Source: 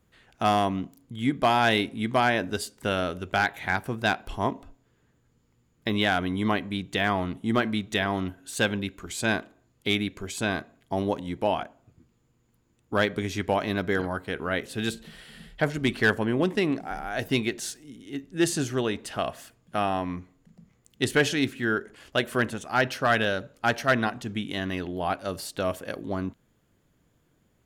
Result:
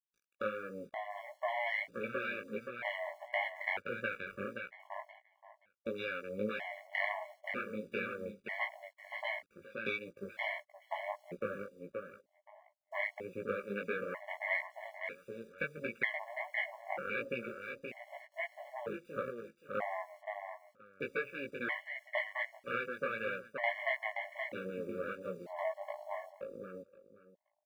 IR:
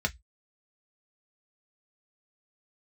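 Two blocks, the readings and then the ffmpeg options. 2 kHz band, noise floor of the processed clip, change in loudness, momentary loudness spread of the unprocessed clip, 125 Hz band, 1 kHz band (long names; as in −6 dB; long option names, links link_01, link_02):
−9.0 dB, −79 dBFS, −12.5 dB, 10 LU, −22.0 dB, −14.0 dB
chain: -af "aeval=exprs='if(lt(val(0),0),0.447*val(0),val(0))':channel_layout=same,afwtdn=0.0224,adynamicequalizer=threshold=0.00631:dfrequency=2100:dqfactor=2.2:tfrequency=2100:tqfactor=2.2:attack=5:release=100:ratio=0.375:range=3:mode=boostabove:tftype=bell,acompressor=threshold=-36dB:ratio=10,aeval=exprs='0.106*(cos(1*acos(clip(val(0)/0.106,-1,1)))-cos(1*PI/2))+0.0422*(cos(2*acos(clip(val(0)/0.106,-1,1)))-cos(2*PI/2))+0.0075*(cos(3*acos(clip(val(0)/0.106,-1,1)))-cos(3*PI/2))+0.00075*(cos(4*acos(clip(val(0)/0.106,-1,1)))-cos(4*PI/2))+0.0237*(cos(6*acos(clip(val(0)/0.106,-1,1)))-cos(6*PI/2))':channel_layout=same,highpass=220,equalizer=frequency=300:width_type=q:width=4:gain=-10,equalizer=frequency=540:width_type=q:width=4:gain=8,equalizer=frequency=2100:width_type=q:width=4:gain=10,lowpass=frequency=3100:width=0.5412,lowpass=frequency=3100:width=1.3066,acrusher=bits=10:mix=0:aa=0.000001,aecho=1:1:525|1050|1575:0.501|0.0902|0.0162,flanger=delay=16.5:depth=3.8:speed=1.5,afftfilt=real='re*gt(sin(2*PI*0.53*pts/sr)*(1-2*mod(floor(b*sr/1024/570),2)),0)':imag='im*gt(sin(2*PI*0.53*pts/sr)*(1-2*mod(floor(b*sr/1024/570),2)),0)':win_size=1024:overlap=0.75,volume=3dB"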